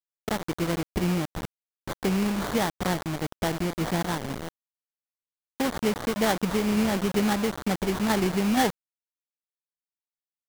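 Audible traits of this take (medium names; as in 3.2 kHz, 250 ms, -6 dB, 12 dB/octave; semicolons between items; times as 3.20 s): aliases and images of a low sample rate 2.6 kHz, jitter 20%; tremolo saw down 2.1 Hz, depth 30%; a quantiser's noise floor 6-bit, dither none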